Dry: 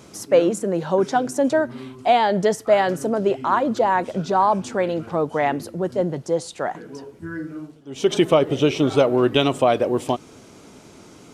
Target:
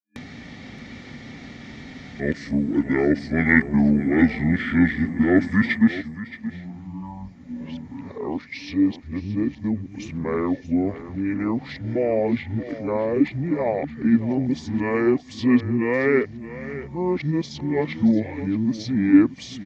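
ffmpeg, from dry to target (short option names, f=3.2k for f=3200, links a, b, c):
-filter_complex "[0:a]areverse,acompressor=mode=upward:threshold=-27dB:ratio=2.5,superequalizer=7b=2.24:13b=3.55,asplit=2[a][b];[b]aecho=0:1:360:0.188[c];[a][c]amix=inputs=2:normalize=0,asetrate=25442,aresample=44100,volume=-5dB"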